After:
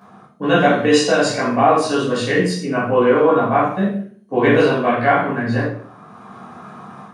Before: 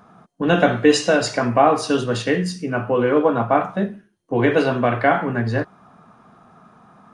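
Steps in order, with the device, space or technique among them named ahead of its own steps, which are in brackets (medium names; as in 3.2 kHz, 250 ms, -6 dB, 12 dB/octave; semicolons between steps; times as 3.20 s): far laptop microphone (reverberation RT60 0.50 s, pre-delay 11 ms, DRR -7.5 dB; high-pass 130 Hz 12 dB/octave; level rider gain up to 6 dB); trim -1 dB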